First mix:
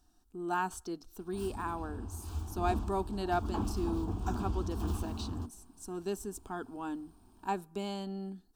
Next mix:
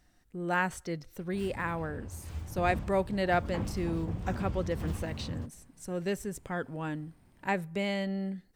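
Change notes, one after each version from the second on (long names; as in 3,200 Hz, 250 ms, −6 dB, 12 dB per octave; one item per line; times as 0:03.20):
background −5.0 dB
master: remove phaser with its sweep stopped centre 540 Hz, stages 6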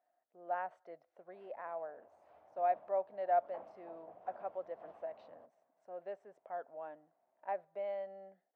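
master: add four-pole ladder band-pass 700 Hz, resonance 75%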